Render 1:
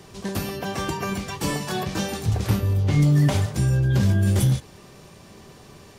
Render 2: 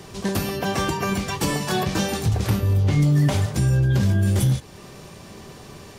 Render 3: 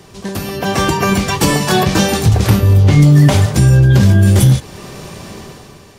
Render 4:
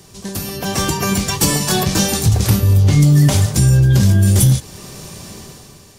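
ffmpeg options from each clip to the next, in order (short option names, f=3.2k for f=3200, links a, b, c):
-af "alimiter=limit=-17dB:level=0:latency=1:release=330,volume=5dB"
-af "dynaudnorm=f=100:g=13:m=14dB"
-af "aeval=exprs='0.841*(cos(1*acos(clip(val(0)/0.841,-1,1)))-cos(1*PI/2))+0.0119*(cos(6*acos(clip(val(0)/0.841,-1,1)))-cos(6*PI/2))':c=same,bass=f=250:g=4,treble=f=4k:g=11,volume=-6.5dB"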